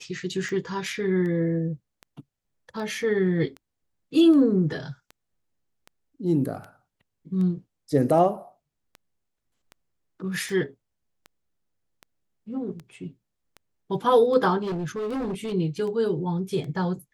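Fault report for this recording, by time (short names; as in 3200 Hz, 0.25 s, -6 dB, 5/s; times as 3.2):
tick 78 rpm -26 dBFS
14.62–15.54 clipped -26 dBFS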